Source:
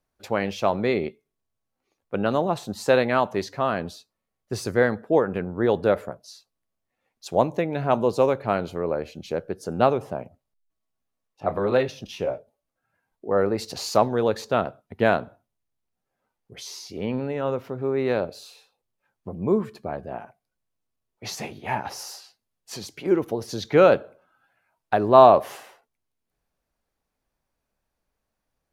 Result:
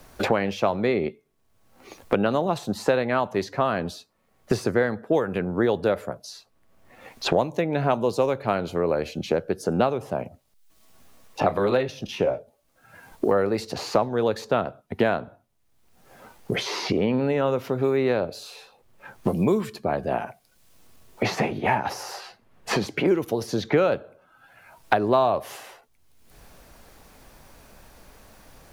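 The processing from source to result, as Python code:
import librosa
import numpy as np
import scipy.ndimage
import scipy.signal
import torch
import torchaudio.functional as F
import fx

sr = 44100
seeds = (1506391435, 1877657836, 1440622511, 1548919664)

y = fx.band_squash(x, sr, depth_pct=100)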